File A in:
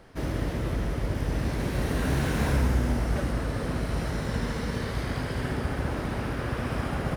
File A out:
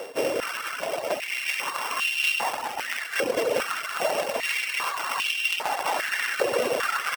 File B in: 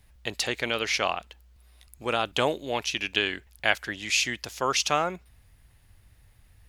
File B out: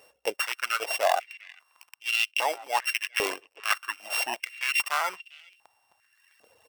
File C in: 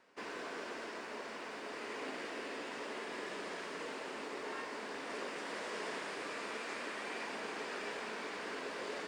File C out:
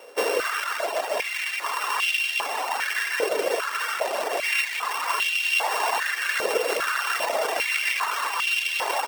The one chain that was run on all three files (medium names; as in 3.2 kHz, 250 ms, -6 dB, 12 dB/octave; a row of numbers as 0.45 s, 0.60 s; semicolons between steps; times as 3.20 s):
sorted samples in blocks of 16 samples; reverb removal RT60 1.5 s; reverse; compression 6:1, threshold -36 dBFS; reverse; speakerphone echo 400 ms, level -19 dB; crackling interface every 0.13 s, samples 256, repeat, from 0.84 s; step-sequenced high-pass 2.5 Hz 500–2800 Hz; peak normalisation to -9 dBFS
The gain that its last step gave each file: +15.5 dB, +9.0 dB, +18.0 dB